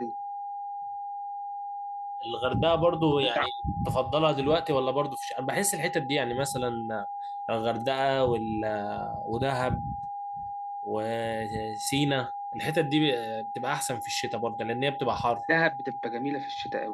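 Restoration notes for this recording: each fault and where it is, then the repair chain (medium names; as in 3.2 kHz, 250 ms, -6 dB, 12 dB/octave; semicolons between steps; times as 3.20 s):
whine 810 Hz -33 dBFS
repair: band-stop 810 Hz, Q 30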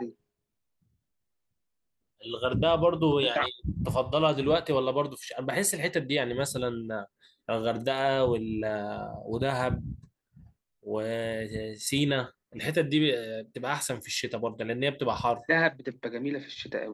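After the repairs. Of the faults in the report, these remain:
nothing left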